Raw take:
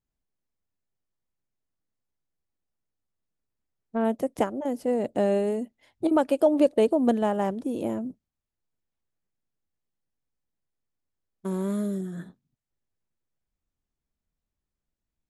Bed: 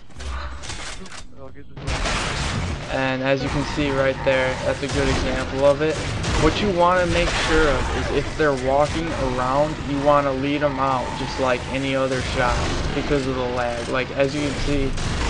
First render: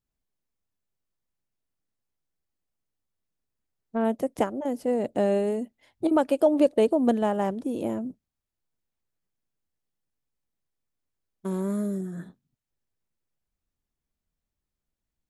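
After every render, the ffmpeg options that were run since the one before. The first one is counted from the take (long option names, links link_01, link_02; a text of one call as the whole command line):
ffmpeg -i in.wav -filter_complex "[0:a]asettb=1/sr,asplit=3[link_01][link_02][link_03];[link_01]atrim=end=11.604[link_04];[link_02]atrim=start=11.6:end=12.23,asetpts=PTS-STARTPTS,afade=type=in:duration=0.004:curve=qsin,afade=type=out:start_time=0.626:duration=0.004:curve=qsin,equalizer=frequency=3200:width_type=o:width=0.76:gain=-9[link_05];[link_03]atrim=start=12.226[link_06];[link_04][link_05]acrossfade=duration=0.004:curve1=hsin:curve2=qsin[link_07];[link_07][link_06]acrossfade=duration=0.004:curve1=qsin:curve2=hsin" out.wav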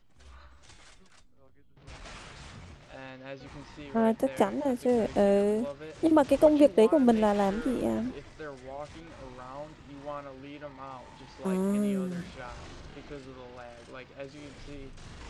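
ffmpeg -i in.wav -i bed.wav -filter_complex "[1:a]volume=-22.5dB[link_01];[0:a][link_01]amix=inputs=2:normalize=0" out.wav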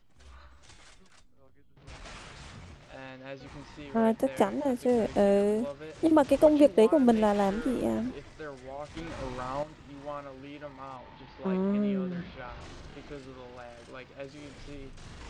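ffmpeg -i in.wav -filter_complex "[0:a]asettb=1/sr,asplit=3[link_01][link_02][link_03];[link_01]atrim=end=10.964[link_04];[link_02]atrim=start=10.96:end=12.61,asetpts=PTS-STARTPTS,afade=type=in:duration=0.004:curve=qsin,afade=type=out:start_time=1.646:duration=0.004:curve=qsin,lowpass=frequency=4300:width=0.5412,lowpass=frequency=4300:width=1.3066[link_05];[link_03]atrim=start=12.606[link_06];[link_04][link_05]acrossfade=duration=0.004:curve1=hsin:curve2=qsin[link_07];[link_07][link_06]acrossfade=duration=0.004:curve1=qsin:curve2=hsin,asplit=3[link_08][link_09][link_10];[link_08]atrim=end=8.972[link_11];[link_09]atrim=start=8.968:end=9.632,asetpts=PTS-STARTPTS,volume=8dB[link_12];[link_10]atrim=start=9.628[link_13];[link_11][link_12]acrossfade=duration=0.004:curve1=hsin:curve2=hsin[link_14];[link_14][link_13]acrossfade=duration=0.004:curve1=hsin:curve2=hsin" out.wav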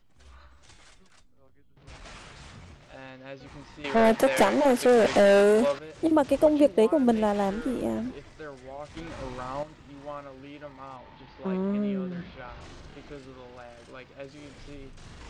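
ffmpeg -i in.wav -filter_complex "[0:a]asettb=1/sr,asplit=3[link_01][link_02][link_03];[link_01]atrim=end=3.844[link_04];[link_02]atrim=start=3.84:end=5.79,asetpts=PTS-STARTPTS,afade=type=in:duration=0.004:curve=qsin,afade=type=out:start_time=1.946:duration=0.004:curve=qsin,asplit=2[link_05][link_06];[link_06]highpass=frequency=720:poles=1,volume=23dB,asoftclip=type=tanh:threshold=-11dB[link_07];[link_05][link_07]amix=inputs=2:normalize=0,lowpass=frequency=7900:poles=1,volume=-6dB[link_08];[link_03]atrim=start=5.786[link_09];[link_04][link_08]acrossfade=duration=0.004:curve1=hsin:curve2=qsin[link_10];[link_10][link_09]acrossfade=duration=0.004:curve1=qsin:curve2=hsin" out.wav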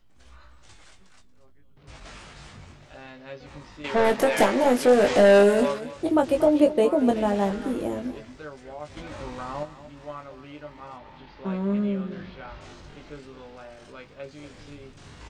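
ffmpeg -i in.wav -filter_complex "[0:a]asplit=2[link_01][link_02];[link_02]adelay=20,volume=-5dB[link_03];[link_01][link_03]amix=inputs=2:normalize=0,aecho=1:1:234:0.188" out.wav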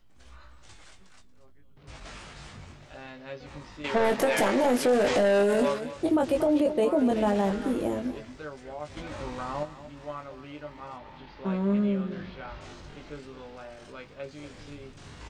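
ffmpeg -i in.wav -af "alimiter=limit=-16.5dB:level=0:latency=1:release=11" out.wav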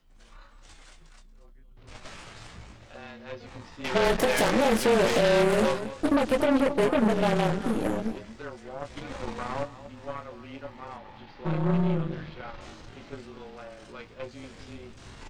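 ffmpeg -i in.wav -af "afreqshift=-30,aeval=exprs='0.237*(cos(1*acos(clip(val(0)/0.237,-1,1)))-cos(1*PI/2))+0.0596*(cos(6*acos(clip(val(0)/0.237,-1,1)))-cos(6*PI/2))+0.0668*(cos(8*acos(clip(val(0)/0.237,-1,1)))-cos(8*PI/2))':channel_layout=same" out.wav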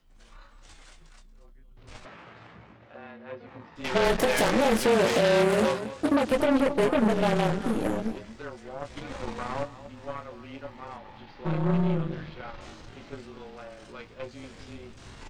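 ffmpeg -i in.wav -filter_complex "[0:a]asplit=3[link_01][link_02][link_03];[link_01]afade=type=out:start_time=2.04:duration=0.02[link_04];[link_02]highpass=130,lowpass=2100,afade=type=in:start_time=2.04:duration=0.02,afade=type=out:start_time=3.75:duration=0.02[link_05];[link_03]afade=type=in:start_time=3.75:duration=0.02[link_06];[link_04][link_05][link_06]amix=inputs=3:normalize=0,asettb=1/sr,asplit=3[link_07][link_08][link_09];[link_07]atrim=end=4.864[link_10];[link_08]atrim=start=4.86:end=6.32,asetpts=PTS-STARTPTS,afade=type=in:duration=0.004:curve=qsin,afade=type=out:start_time=1.456:duration=0.004:curve=qsin,highpass=61[link_11];[link_09]atrim=start=6.316[link_12];[link_10][link_11]acrossfade=duration=0.004:curve1=hsin:curve2=qsin[link_13];[link_13][link_12]acrossfade=duration=0.004:curve1=qsin:curve2=hsin" out.wav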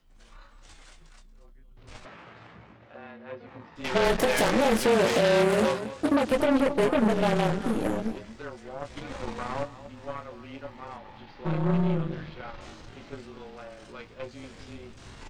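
ffmpeg -i in.wav -af anull out.wav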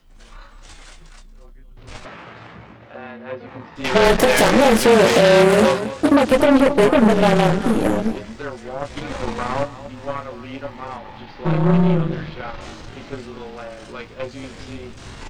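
ffmpeg -i in.wav -af "volume=9.5dB,alimiter=limit=-1dB:level=0:latency=1" out.wav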